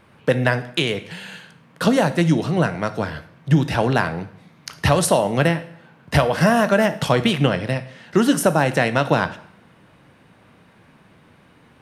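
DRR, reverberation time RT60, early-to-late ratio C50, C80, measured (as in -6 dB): 11.0 dB, 0.65 s, 15.0 dB, 18.0 dB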